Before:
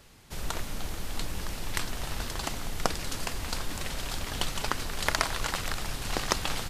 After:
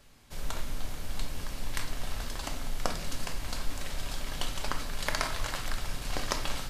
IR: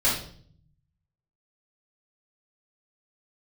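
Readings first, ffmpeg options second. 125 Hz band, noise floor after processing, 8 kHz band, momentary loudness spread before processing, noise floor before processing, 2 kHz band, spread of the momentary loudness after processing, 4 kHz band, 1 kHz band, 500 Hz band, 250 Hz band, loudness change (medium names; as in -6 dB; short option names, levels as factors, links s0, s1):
-2.5 dB, -41 dBFS, -4.5 dB, 8 LU, -38 dBFS, -4.0 dB, 7 LU, -4.0 dB, -4.0 dB, -3.5 dB, -3.5 dB, -3.5 dB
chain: -filter_complex "[0:a]asplit=2[s0][s1];[1:a]atrim=start_sample=2205[s2];[s1][s2]afir=irnorm=-1:irlink=0,volume=0.141[s3];[s0][s3]amix=inputs=2:normalize=0,volume=0.501"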